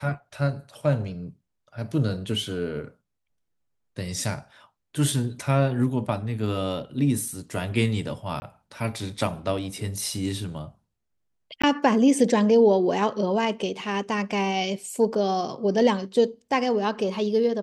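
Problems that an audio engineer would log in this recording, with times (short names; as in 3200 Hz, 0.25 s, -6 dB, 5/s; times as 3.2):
8.4–8.42 gap 20 ms
11.62–11.63 gap 15 ms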